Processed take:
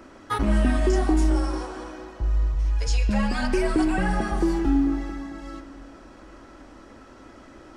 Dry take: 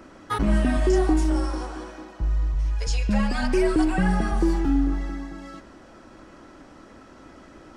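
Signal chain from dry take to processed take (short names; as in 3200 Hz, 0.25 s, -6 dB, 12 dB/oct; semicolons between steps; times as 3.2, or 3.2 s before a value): bell 170 Hz -12 dB 0.22 oct; on a send: reverb RT60 2.8 s, pre-delay 7 ms, DRR 10.5 dB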